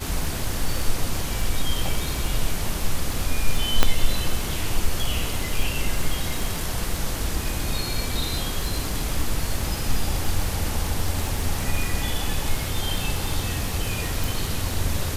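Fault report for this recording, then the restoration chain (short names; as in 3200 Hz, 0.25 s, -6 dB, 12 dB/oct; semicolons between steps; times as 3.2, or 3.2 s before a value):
crackle 26/s -25 dBFS
3.83 pop -1 dBFS
14.24 pop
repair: de-click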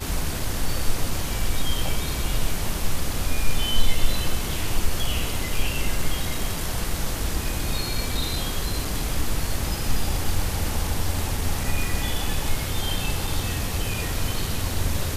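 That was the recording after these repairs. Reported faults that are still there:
none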